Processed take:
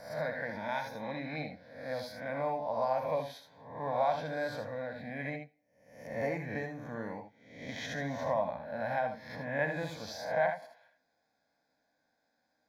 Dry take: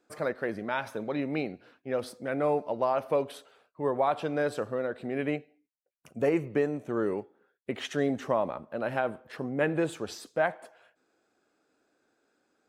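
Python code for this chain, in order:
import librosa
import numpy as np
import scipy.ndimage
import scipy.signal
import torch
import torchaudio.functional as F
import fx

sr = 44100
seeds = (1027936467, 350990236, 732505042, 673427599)

y = fx.spec_swells(x, sr, rise_s=0.72)
y = fx.fixed_phaser(y, sr, hz=1900.0, stages=8)
y = fx.room_early_taps(y, sr, ms=(65, 78), db=(-10.5, -8.5))
y = F.gain(torch.from_numpy(y), -3.5).numpy()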